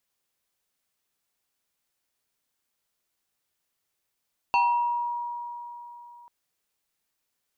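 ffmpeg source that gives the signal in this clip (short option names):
-f lavfi -i "aevalsrc='0.133*pow(10,-3*t/3.48)*sin(2*PI*956*t+0.95*pow(10,-3*t/0.8)*sin(2*PI*1.83*956*t))':d=1.74:s=44100"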